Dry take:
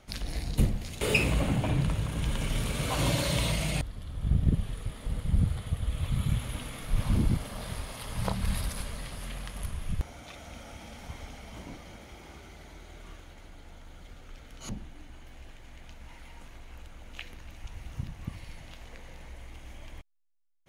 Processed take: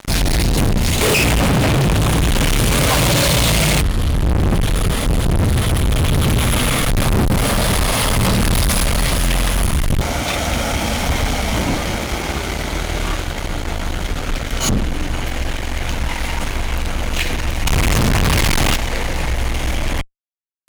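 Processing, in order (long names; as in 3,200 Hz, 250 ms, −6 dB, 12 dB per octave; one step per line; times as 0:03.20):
0:17.67–0:18.76: power curve on the samples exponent 0.5
fuzz pedal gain 44 dB, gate −52 dBFS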